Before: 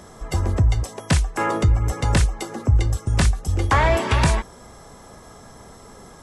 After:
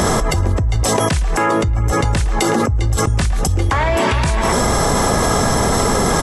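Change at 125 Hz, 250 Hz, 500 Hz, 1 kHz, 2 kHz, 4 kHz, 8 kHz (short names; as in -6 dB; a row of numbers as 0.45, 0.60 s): +3.0, +9.0, +10.0, +8.5, +6.5, +8.5, +12.0 dB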